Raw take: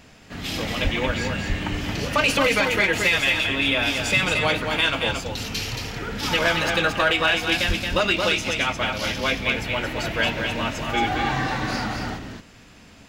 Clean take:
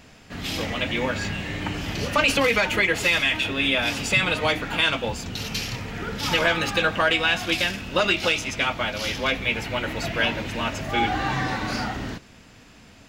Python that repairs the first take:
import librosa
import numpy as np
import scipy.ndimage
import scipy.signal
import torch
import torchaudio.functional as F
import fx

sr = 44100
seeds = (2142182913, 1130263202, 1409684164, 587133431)

y = fx.fix_declip(x, sr, threshold_db=-11.0)
y = fx.highpass(y, sr, hz=140.0, slope=24, at=(0.83, 0.95), fade=0.02)
y = fx.highpass(y, sr, hz=140.0, slope=24, at=(1.48, 1.6), fade=0.02)
y = fx.highpass(y, sr, hz=140.0, slope=24, at=(7.67, 7.79), fade=0.02)
y = fx.fix_echo_inverse(y, sr, delay_ms=225, level_db=-5.0)